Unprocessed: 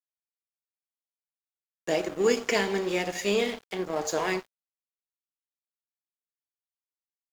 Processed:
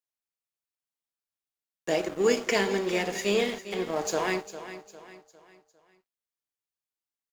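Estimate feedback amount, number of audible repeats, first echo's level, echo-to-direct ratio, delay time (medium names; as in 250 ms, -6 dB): 41%, 3, -13.0 dB, -12.0 dB, 403 ms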